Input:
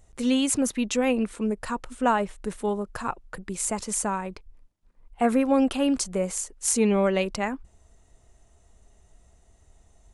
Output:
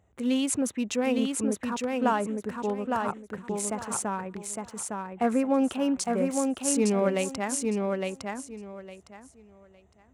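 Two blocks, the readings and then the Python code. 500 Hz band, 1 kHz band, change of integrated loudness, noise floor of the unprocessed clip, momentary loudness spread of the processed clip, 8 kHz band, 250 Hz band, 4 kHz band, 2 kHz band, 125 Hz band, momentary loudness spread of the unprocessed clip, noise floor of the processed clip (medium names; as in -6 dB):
-1.5 dB, -1.5 dB, -2.5 dB, -60 dBFS, 12 LU, -2.5 dB, -1.5 dB, -3.0 dB, -2.5 dB, -1.5 dB, 11 LU, -59 dBFS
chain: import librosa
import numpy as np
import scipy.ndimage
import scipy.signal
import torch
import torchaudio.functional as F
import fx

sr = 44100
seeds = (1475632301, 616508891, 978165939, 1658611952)

y = fx.wiener(x, sr, points=9)
y = scipy.signal.sosfilt(scipy.signal.butter(4, 70.0, 'highpass', fs=sr, output='sos'), y)
y = fx.echo_feedback(y, sr, ms=859, feedback_pct=22, wet_db=-3.5)
y = F.gain(torch.from_numpy(y), -3.0).numpy()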